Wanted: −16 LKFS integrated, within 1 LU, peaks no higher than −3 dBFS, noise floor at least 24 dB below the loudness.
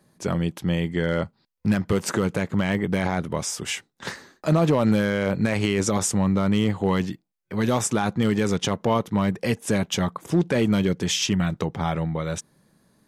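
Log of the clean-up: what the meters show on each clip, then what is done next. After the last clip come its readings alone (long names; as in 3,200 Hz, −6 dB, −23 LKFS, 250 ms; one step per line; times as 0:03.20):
share of clipped samples 0.3%; peaks flattened at −11.5 dBFS; integrated loudness −24.0 LKFS; sample peak −11.5 dBFS; target loudness −16.0 LKFS
→ clipped peaks rebuilt −11.5 dBFS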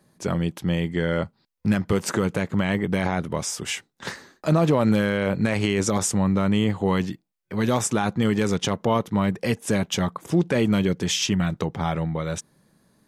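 share of clipped samples 0.0%; integrated loudness −24.0 LKFS; sample peak −7.0 dBFS; target loudness −16.0 LKFS
→ level +8 dB
brickwall limiter −3 dBFS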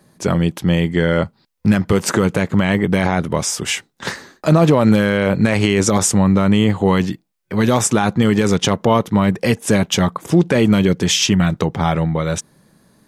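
integrated loudness −16.5 LKFS; sample peak −3.0 dBFS; background noise floor −61 dBFS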